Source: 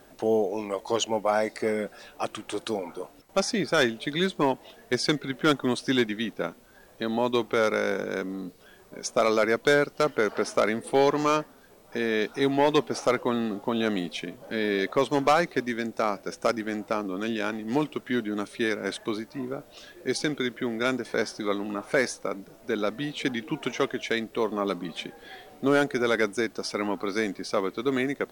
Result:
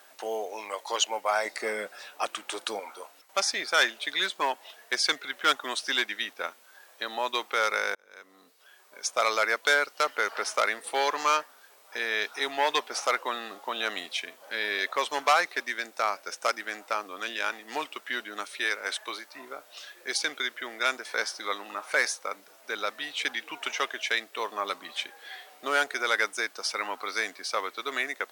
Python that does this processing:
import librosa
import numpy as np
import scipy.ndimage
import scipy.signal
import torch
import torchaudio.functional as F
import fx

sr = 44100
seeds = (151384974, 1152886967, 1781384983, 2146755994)

y = fx.low_shelf(x, sr, hz=350.0, db=10.5, at=(1.45, 2.8))
y = fx.highpass(y, sr, hz=260.0, slope=12, at=(18.6, 19.35))
y = fx.edit(y, sr, fx.fade_in_span(start_s=7.95, length_s=1.28), tone=tone)
y = scipy.signal.sosfilt(scipy.signal.butter(2, 970.0, 'highpass', fs=sr, output='sos'), y)
y = y * librosa.db_to_amplitude(3.5)